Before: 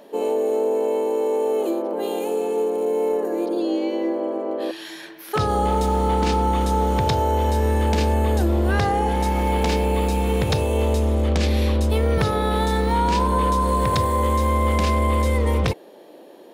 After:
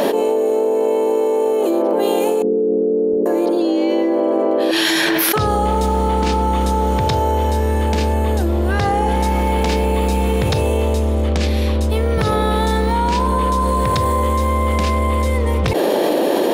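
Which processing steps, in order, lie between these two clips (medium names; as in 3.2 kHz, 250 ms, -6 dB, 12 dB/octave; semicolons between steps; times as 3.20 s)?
2.42–3.26 s: Gaussian low-pass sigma 23 samples; level flattener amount 100%; trim +1 dB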